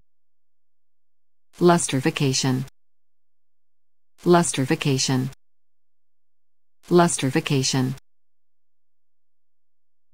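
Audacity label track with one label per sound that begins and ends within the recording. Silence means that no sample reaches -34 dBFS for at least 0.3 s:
1.610000	2.640000	sound
4.260000	5.290000	sound
6.910000	7.980000	sound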